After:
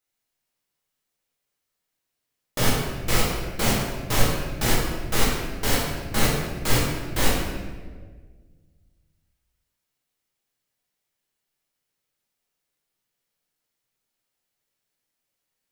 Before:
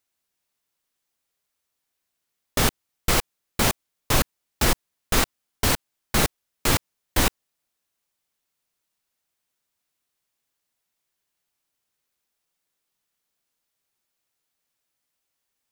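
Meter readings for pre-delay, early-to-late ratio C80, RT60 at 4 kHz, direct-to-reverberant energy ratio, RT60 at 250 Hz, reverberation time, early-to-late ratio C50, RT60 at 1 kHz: 6 ms, 3.0 dB, 1.0 s, −6.0 dB, 2.0 s, 1.6 s, 0.5 dB, 1.3 s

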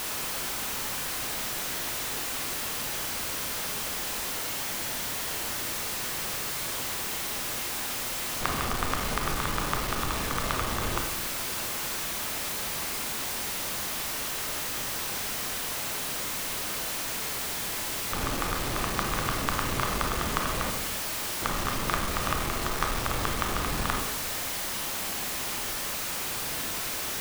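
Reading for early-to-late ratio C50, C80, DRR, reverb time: 5.5 dB, 9.0 dB, 3.0 dB, 0.95 s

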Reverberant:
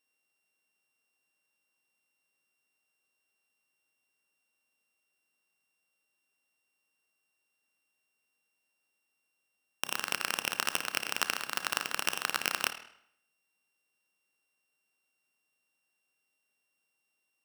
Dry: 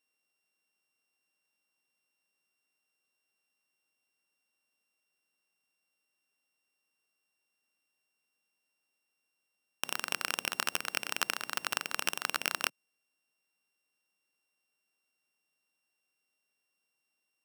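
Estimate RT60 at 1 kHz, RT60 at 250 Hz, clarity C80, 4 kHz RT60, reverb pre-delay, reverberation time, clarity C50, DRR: 0.70 s, 0.70 s, 14.0 dB, 0.60 s, 30 ms, 0.70 s, 11.0 dB, 9.5 dB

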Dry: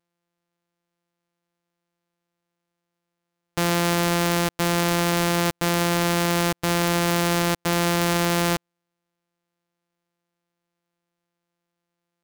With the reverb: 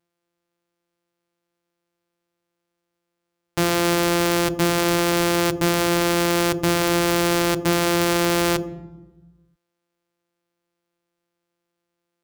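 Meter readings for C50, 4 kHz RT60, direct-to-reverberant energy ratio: 13.5 dB, 0.70 s, 9.5 dB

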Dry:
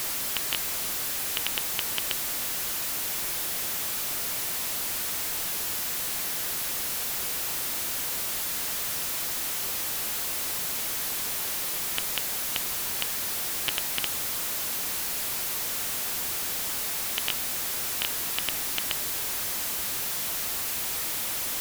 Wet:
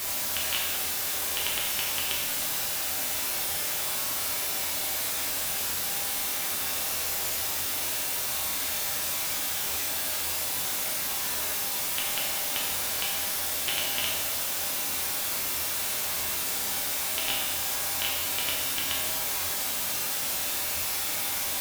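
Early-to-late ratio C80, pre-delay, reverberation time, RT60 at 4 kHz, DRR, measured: 3.5 dB, 5 ms, 1.2 s, 1.1 s, −5.0 dB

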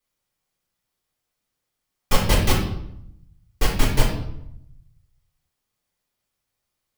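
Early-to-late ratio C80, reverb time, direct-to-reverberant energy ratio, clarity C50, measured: 8.0 dB, 0.80 s, −6.0 dB, 4.5 dB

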